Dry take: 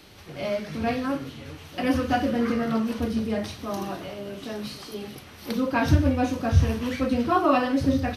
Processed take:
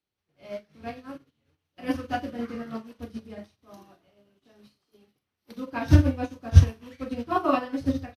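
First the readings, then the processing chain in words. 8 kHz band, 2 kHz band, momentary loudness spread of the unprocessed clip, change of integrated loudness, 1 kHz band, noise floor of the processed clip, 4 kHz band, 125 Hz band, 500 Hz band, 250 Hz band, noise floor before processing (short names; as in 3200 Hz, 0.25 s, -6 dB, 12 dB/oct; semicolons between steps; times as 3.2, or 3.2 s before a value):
-5.5 dB, -7.0 dB, 15 LU, 0.0 dB, -5.0 dB, -84 dBFS, -8.0 dB, +2.5 dB, -7.0 dB, -6.0 dB, -46 dBFS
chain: early reflections 34 ms -11 dB, 44 ms -12.5 dB; upward expander 2.5:1, over -42 dBFS; gain +6 dB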